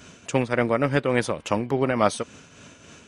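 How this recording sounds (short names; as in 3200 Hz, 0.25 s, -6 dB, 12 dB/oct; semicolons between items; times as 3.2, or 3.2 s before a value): tremolo triangle 3.5 Hz, depth 55%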